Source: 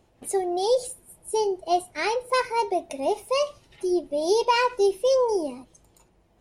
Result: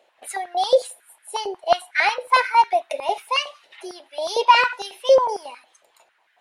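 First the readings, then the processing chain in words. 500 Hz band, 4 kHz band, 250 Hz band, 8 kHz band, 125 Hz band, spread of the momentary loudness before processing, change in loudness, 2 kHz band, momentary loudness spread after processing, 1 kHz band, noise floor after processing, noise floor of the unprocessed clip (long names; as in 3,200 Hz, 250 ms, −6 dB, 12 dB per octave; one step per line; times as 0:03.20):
+1.0 dB, +6.5 dB, below −10 dB, −1.0 dB, can't be measured, 9 LU, +4.5 dB, +9.5 dB, 18 LU, +7.0 dB, −64 dBFS, −62 dBFS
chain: flat-topped bell 2,500 Hz +9 dB
high-pass on a step sequencer 11 Hz 580–1,600 Hz
level −1.5 dB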